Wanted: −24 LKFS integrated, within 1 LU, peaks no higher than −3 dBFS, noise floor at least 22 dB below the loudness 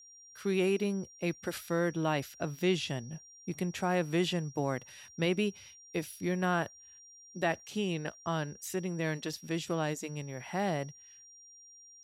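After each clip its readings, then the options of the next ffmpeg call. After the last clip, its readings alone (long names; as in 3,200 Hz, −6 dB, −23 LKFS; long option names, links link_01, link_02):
interfering tone 5,700 Hz; level of the tone −53 dBFS; integrated loudness −34.0 LKFS; sample peak −16.5 dBFS; target loudness −24.0 LKFS
→ -af "bandreject=frequency=5700:width=30"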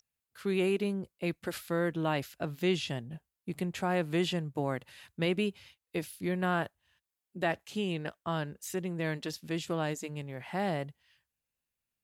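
interfering tone none found; integrated loudness −34.0 LKFS; sample peak −16.5 dBFS; target loudness −24.0 LKFS
→ -af "volume=10dB"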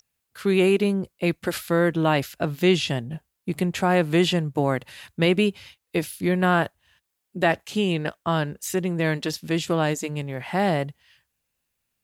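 integrated loudness −24.0 LKFS; sample peak −6.5 dBFS; background noise floor −79 dBFS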